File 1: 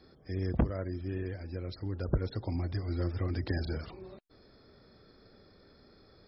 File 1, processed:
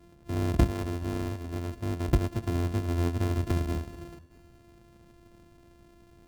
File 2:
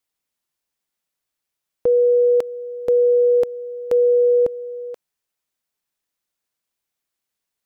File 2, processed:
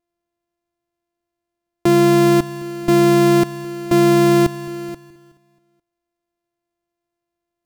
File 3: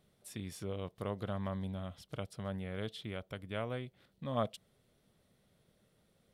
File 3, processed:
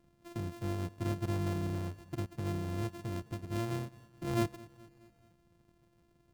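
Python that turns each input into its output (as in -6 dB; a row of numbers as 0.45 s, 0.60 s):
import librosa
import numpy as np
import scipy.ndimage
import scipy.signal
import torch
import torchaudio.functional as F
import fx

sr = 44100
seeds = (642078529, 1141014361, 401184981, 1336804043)

p1 = np.r_[np.sort(x[:len(x) // 128 * 128].reshape(-1, 128), axis=1).ravel(), x[len(x) // 128 * 128:]]
p2 = fx.low_shelf(p1, sr, hz=490.0, db=10.5)
p3 = p2 + fx.echo_feedback(p2, sr, ms=213, feedback_pct=57, wet_db=-21.0, dry=0)
y = p3 * librosa.db_to_amplitude(-3.5)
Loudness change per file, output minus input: +5.0 LU, +2.5 LU, +3.5 LU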